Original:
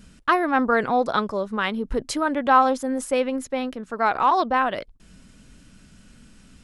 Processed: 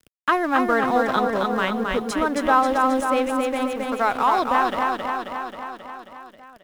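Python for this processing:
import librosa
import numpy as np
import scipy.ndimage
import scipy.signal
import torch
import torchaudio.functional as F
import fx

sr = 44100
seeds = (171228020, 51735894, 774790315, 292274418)

p1 = fx.notch(x, sr, hz=4500.0, q=9.9)
p2 = fx.quant_dither(p1, sr, seeds[0], bits=10, dither='triangular')
p3 = np.sign(p2) * np.maximum(np.abs(p2) - 10.0 ** (-40.5 / 20.0), 0.0)
p4 = p3 + fx.echo_feedback(p3, sr, ms=268, feedback_pct=55, wet_db=-4, dry=0)
y = fx.band_squash(p4, sr, depth_pct=40)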